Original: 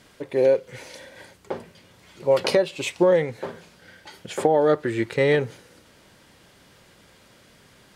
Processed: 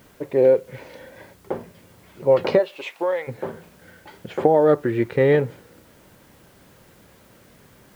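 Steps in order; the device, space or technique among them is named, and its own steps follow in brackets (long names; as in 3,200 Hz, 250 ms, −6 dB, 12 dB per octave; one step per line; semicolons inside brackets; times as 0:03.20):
0:02.58–0:03.27: high-pass filter 460 Hz → 980 Hz 12 dB per octave
cassette deck with a dirty head (head-to-tape spacing loss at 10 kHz 32 dB; tape wow and flutter; white noise bed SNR 36 dB)
level +4.5 dB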